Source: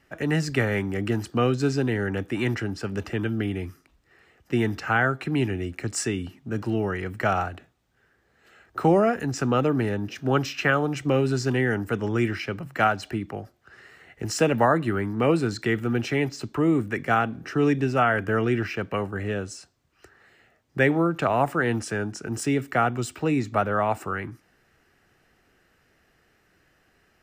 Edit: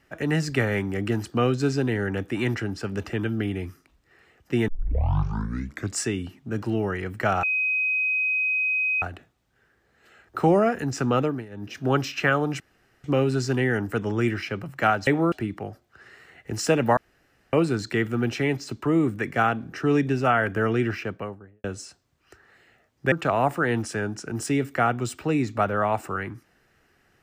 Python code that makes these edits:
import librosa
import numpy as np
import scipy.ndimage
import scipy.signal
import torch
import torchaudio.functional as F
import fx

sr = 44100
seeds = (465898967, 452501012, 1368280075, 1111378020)

y = fx.studio_fade_out(x, sr, start_s=18.61, length_s=0.75)
y = fx.edit(y, sr, fx.tape_start(start_s=4.68, length_s=1.29),
    fx.insert_tone(at_s=7.43, length_s=1.59, hz=2520.0, db=-21.0),
    fx.fade_down_up(start_s=9.61, length_s=0.56, db=-17.5, fade_s=0.26),
    fx.insert_room_tone(at_s=11.01, length_s=0.44),
    fx.room_tone_fill(start_s=14.69, length_s=0.56),
    fx.move(start_s=20.84, length_s=0.25, to_s=13.04), tone=tone)